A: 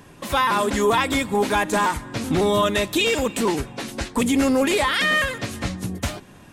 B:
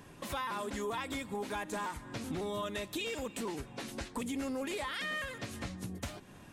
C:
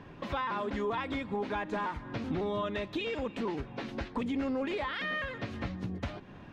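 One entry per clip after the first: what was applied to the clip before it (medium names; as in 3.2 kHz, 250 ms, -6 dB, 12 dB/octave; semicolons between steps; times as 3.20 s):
compression 2.5:1, threshold -33 dBFS, peak gain reduction 11.5 dB; trim -7 dB
distance through air 250 m; trim +5 dB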